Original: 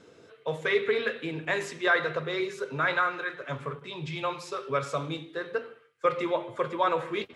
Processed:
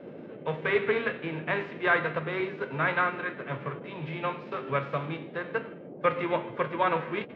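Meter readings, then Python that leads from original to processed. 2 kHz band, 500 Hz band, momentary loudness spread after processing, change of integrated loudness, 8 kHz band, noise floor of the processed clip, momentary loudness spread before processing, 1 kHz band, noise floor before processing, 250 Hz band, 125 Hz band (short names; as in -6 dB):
0.0 dB, -0.5 dB, 10 LU, 0.0 dB, under -25 dB, -44 dBFS, 11 LU, 0.0 dB, -57 dBFS, +1.0 dB, +2.5 dB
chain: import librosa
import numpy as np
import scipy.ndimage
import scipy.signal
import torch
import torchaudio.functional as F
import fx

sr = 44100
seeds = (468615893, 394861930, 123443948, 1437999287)

y = fx.envelope_flatten(x, sr, power=0.6)
y = fx.dmg_noise_band(y, sr, seeds[0], low_hz=140.0, high_hz=570.0, level_db=-44.0)
y = scipy.signal.sosfilt(scipy.signal.butter(4, 2600.0, 'lowpass', fs=sr, output='sos'), y)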